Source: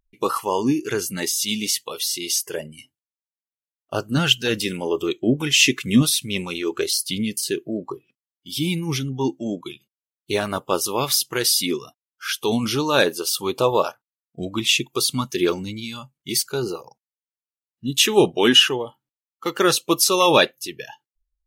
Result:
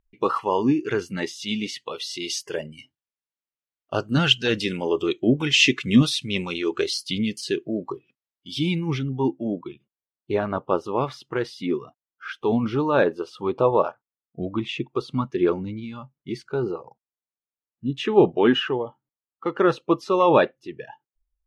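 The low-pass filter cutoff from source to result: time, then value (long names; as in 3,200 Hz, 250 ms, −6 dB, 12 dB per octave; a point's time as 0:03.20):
0:01.85 2,700 Hz
0:02.29 4,300 Hz
0:08.53 4,300 Hz
0:08.85 2,600 Hz
0:09.51 1,400 Hz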